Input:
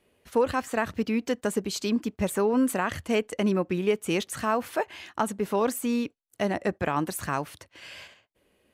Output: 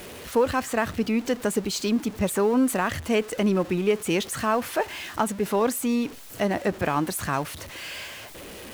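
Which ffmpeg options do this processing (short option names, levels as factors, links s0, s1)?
-af "aeval=exprs='val(0)+0.5*0.015*sgn(val(0))':c=same,volume=1.19"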